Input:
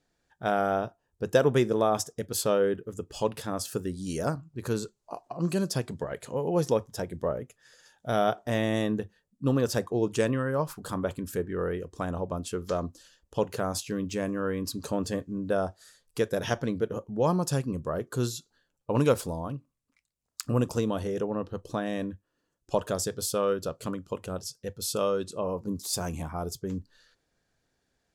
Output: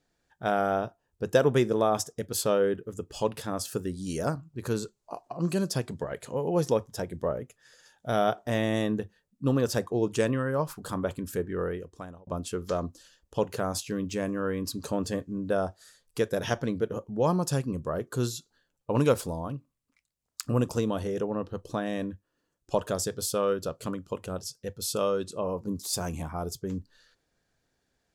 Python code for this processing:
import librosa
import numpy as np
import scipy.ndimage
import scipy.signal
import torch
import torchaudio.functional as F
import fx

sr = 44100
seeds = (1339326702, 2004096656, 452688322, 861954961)

y = fx.edit(x, sr, fx.fade_out_span(start_s=11.6, length_s=0.67), tone=tone)